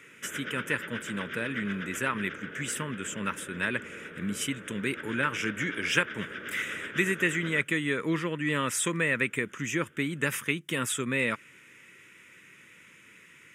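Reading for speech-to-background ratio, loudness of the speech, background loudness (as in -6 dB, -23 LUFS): 9.5 dB, -30.5 LUFS, -40.0 LUFS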